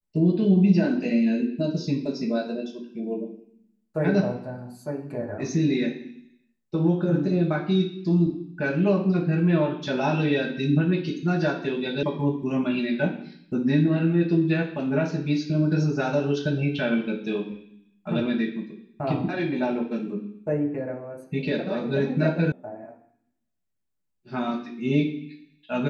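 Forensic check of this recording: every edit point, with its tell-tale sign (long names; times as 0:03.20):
0:12.03: cut off before it has died away
0:22.52: cut off before it has died away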